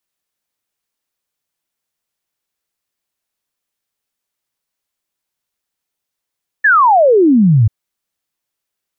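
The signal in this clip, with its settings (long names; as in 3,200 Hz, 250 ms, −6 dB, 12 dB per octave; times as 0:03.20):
exponential sine sweep 1,800 Hz → 100 Hz 1.04 s −6 dBFS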